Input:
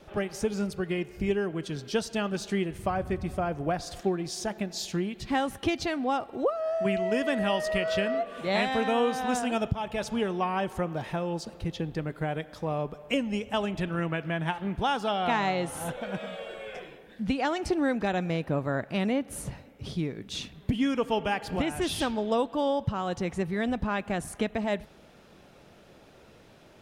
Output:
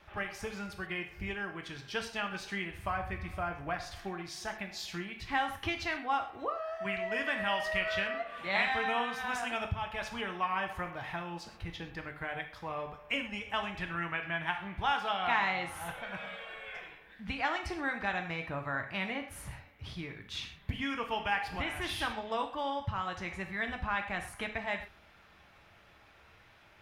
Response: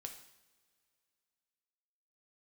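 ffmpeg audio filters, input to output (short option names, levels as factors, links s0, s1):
-filter_complex "[0:a]equalizer=f=250:t=o:w=1:g=-9,equalizer=f=500:t=o:w=1:g=-8,equalizer=f=1000:t=o:w=1:g=4,equalizer=f=2000:t=o:w=1:g=7,equalizer=f=8000:t=o:w=1:g=-7[s0];[1:a]atrim=start_sample=2205,atrim=end_sample=6174[s1];[s0][s1]afir=irnorm=-1:irlink=0"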